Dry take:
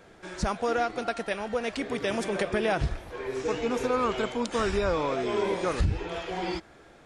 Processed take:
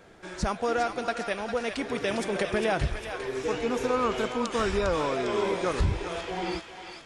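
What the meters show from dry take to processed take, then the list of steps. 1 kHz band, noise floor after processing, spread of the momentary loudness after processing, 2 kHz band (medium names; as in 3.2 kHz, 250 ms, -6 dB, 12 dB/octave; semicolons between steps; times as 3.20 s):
+0.5 dB, -46 dBFS, 7 LU, +1.0 dB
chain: thinning echo 403 ms, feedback 58%, high-pass 1.1 kHz, level -6 dB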